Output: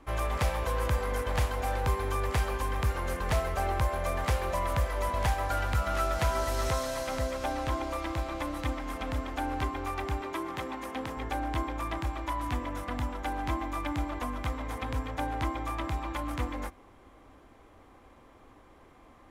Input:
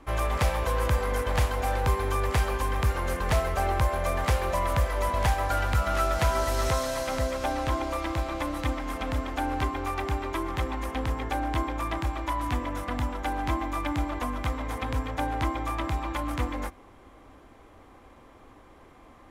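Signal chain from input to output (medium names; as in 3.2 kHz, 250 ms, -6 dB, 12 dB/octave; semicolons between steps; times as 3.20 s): 10.21–11.17 s: high-pass 150 Hz 12 dB/octave; trim -3.5 dB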